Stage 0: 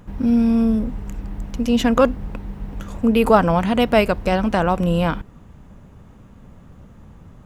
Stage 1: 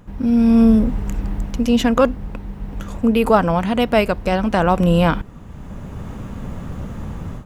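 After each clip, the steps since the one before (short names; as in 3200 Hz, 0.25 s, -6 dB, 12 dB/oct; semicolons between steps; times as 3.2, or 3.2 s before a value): AGC gain up to 16 dB; gain -1 dB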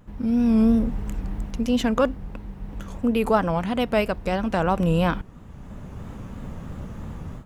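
vibrato 3 Hz 75 cents; gain -6 dB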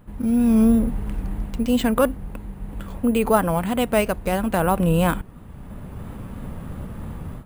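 careless resampling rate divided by 4×, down filtered, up hold; gain +2 dB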